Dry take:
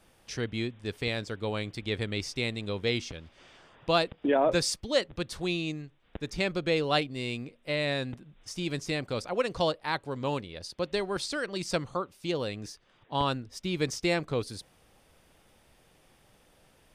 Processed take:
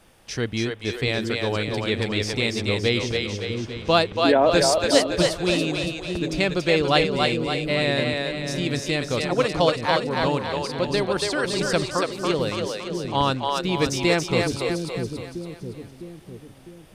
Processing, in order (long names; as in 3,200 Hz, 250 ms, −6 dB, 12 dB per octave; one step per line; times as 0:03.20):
echo with a time of its own for lows and highs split 390 Hz, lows 655 ms, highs 282 ms, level −3 dB
level +6.5 dB